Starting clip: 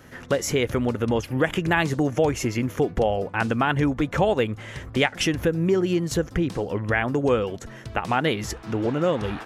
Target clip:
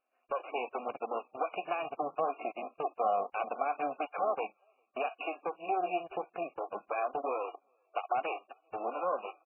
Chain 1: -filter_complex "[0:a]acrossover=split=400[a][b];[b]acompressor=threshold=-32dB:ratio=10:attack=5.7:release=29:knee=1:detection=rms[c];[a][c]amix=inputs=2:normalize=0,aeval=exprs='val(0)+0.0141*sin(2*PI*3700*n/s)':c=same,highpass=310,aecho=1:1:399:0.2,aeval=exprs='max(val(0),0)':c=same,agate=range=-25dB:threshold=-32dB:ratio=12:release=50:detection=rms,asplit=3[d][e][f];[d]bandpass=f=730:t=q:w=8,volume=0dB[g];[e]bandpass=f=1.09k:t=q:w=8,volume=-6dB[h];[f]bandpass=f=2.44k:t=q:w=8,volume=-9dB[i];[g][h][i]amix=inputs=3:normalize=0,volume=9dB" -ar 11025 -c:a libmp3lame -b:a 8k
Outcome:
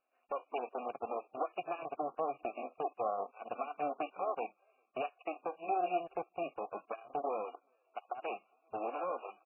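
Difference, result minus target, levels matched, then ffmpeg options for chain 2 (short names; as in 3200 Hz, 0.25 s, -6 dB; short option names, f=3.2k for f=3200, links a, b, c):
compressor: peak gain reduction +7 dB
-filter_complex "[0:a]acrossover=split=400[a][b];[b]acompressor=threshold=-24.5dB:ratio=10:attack=5.7:release=29:knee=1:detection=rms[c];[a][c]amix=inputs=2:normalize=0,aeval=exprs='val(0)+0.0141*sin(2*PI*3700*n/s)':c=same,highpass=310,aecho=1:1:399:0.2,aeval=exprs='max(val(0),0)':c=same,agate=range=-25dB:threshold=-32dB:ratio=12:release=50:detection=rms,asplit=3[d][e][f];[d]bandpass=f=730:t=q:w=8,volume=0dB[g];[e]bandpass=f=1.09k:t=q:w=8,volume=-6dB[h];[f]bandpass=f=2.44k:t=q:w=8,volume=-9dB[i];[g][h][i]amix=inputs=3:normalize=0,volume=9dB" -ar 11025 -c:a libmp3lame -b:a 8k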